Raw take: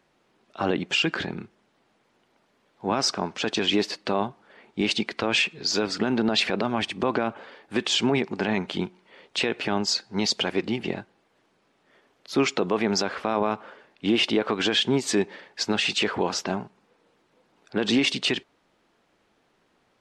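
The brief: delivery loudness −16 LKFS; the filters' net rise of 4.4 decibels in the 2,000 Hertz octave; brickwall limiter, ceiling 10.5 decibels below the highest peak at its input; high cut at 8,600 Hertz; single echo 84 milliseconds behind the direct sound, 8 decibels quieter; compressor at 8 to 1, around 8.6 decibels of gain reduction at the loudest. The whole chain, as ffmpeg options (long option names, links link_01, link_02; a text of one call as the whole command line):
ffmpeg -i in.wav -af "lowpass=8600,equalizer=frequency=2000:width_type=o:gain=6,acompressor=threshold=-25dB:ratio=8,alimiter=limit=-21.5dB:level=0:latency=1,aecho=1:1:84:0.398,volume=16.5dB" out.wav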